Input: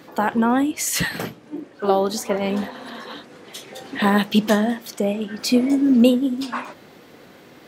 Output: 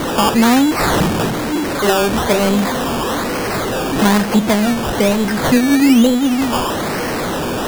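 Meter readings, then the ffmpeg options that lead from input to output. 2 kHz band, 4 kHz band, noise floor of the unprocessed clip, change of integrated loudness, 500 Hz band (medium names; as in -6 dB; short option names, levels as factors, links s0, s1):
+8.0 dB, +8.5 dB, -47 dBFS, +5.5 dB, +6.5 dB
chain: -af "aeval=exprs='val(0)+0.5*0.119*sgn(val(0))':c=same,acrusher=samples=17:mix=1:aa=0.000001:lfo=1:lforange=10.2:lforate=1.1,alimiter=limit=0.376:level=0:latency=1:release=312,volume=1.58"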